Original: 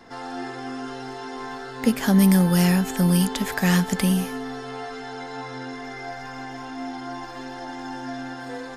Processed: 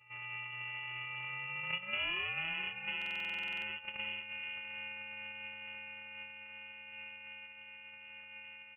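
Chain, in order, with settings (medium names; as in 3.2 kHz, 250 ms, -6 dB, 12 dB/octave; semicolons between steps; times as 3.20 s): sorted samples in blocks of 128 samples; Doppler pass-by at 2.12 s, 26 m/s, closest 7.7 m; high-pass 240 Hz 24 dB/octave; bass shelf 390 Hz +6.5 dB; band-stop 1.5 kHz, Q 6; comb 4.4 ms, depth 95%; compression 5:1, threshold -43 dBFS, peak gain reduction 26.5 dB; delay 437 ms -10.5 dB; frequency inversion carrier 3.1 kHz; buffer glitch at 2.97 s, samples 2048, times 13; tape noise reduction on one side only decoder only; trim +4.5 dB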